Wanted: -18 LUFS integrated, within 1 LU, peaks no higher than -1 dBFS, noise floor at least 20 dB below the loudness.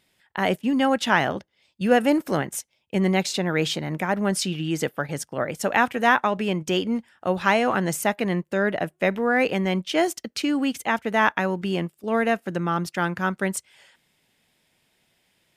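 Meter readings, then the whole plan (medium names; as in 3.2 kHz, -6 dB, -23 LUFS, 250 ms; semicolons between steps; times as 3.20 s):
loudness -24.0 LUFS; peak level -4.0 dBFS; loudness target -18.0 LUFS
-> trim +6 dB; peak limiter -1 dBFS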